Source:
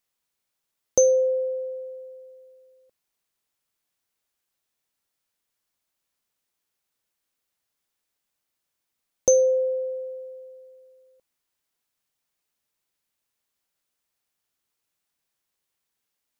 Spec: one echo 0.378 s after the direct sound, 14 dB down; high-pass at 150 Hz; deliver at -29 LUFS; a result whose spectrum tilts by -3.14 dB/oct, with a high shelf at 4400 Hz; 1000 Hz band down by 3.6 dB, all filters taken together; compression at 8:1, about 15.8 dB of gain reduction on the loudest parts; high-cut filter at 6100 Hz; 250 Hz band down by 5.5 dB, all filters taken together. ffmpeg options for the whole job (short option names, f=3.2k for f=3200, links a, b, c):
-af "highpass=150,lowpass=6.1k,equalizer=f=250:t=o:g=-7,equalizer=f=1k:t=o:g=-4.5,highshelf=f=4.4k:g=-6.5,acompressor=threshold=-34dB:ratio=8,aecho=1:1:378:0.2,volume=9dB"